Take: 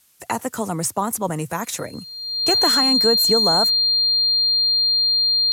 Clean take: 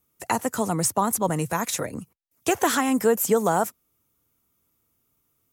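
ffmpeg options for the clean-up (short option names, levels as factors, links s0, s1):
-af "bandreject=f=4200:w=30,agate=range=0.0891:threshold=0.0355"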